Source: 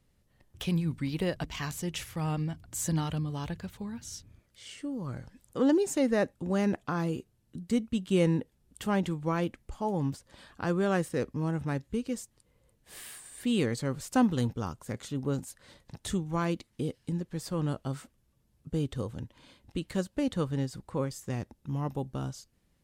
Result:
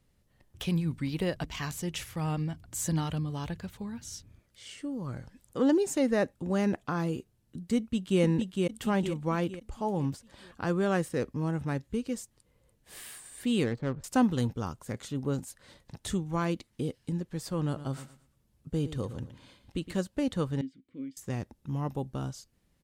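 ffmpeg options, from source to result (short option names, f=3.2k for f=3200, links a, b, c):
-filter_complex "[0:a]asplit=2[a][b];[b]afade=t=in:st=7.77:d=0.01,afade=t=out:st=8.21:d=0.01,aecho=0:1:460|920|1380|1840|2300|2760:0.707946|0.318576|0.143359|0.0645116|0.0290302|0.0130636[c];[a][c]amix=inputs=2:normalize=0,asettb=1/sr,asplit=3[d][e][f];[d]atrim=end=13.644[g];[e]atrim=start=13.64:end=14.04,asetpts=PTS-STARTPTS,afade=t=in:d=0.004:c=qsin,afade=t=out:st=0.396:d=0.004:c=qsin,adynamicsmooth=sensitivity=6.5:basefreq=710[h];[f]atrim=start=14.036[i];[g][h]acrossfade=d=0.004:c1=hsin:c2=qsin[j];[j][i]acrossfade=d=0.004:c1=qsin:c2=hsin,asplit=3[k][l][m];[k]afade=t=out:st=17.75:d=0.02[n];[l]aecho=1:1:114|228|342:0.224|0.056|0.014,afade=t=in:st=17.75:d=0.02,afade=t=out:st=19.94:d=0.02[o];[m]afade=t=in:st=19.94:d=0.02[p];[n][o][p]amix=inputs=3:normalize=0,asettb=1/sr,asplit=3[q][r][s];[q]atrim=end=20.614[t];[r]atrim=start=20.61:end=21.17,asetpts=PTS-STARTPTS,afade=t=in:d=0.004:c=qsin,afade=t=out:st=0.556:d=0.004:c=qsin,asplit=3[u][v][w];[u]bandpass=f=270:t=q:w=8,volume=0dB[x];[v]bandpass=f=2.29k:t=q:w=8,volume=-6dB[y];[w]bandpass=f=3.01k:t=q:w=8,volume=-9dB[z];[x][y][z]amix=inputs=3:normalize=0[aa];[s]atrim=start=21.166[ab];[t][aa]acrossfade=d=0.004:c1=hsin:c2=qsin[ac];[ac][ab]acrossfade=d=0.004:c1=qsin:c2=hsin"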